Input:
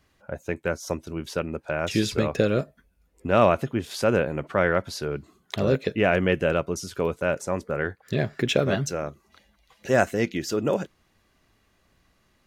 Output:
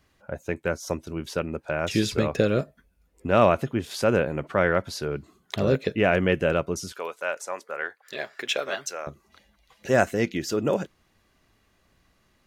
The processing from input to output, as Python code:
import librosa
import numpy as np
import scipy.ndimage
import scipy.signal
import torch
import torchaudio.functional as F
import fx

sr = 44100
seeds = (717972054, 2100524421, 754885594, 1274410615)

y = fx.highpass(x, sr, hz=730.0, slope=12, at=(6.92, 9.07))